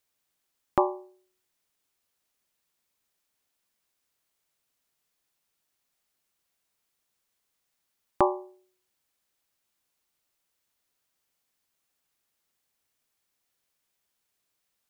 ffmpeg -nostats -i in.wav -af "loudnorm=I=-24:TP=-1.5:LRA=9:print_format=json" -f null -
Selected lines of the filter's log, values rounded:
"input_i" : "-28.6",
"input_tp" : "-5.6",
"input_lra" : "0.6",
"input_thresh" : "-40.3",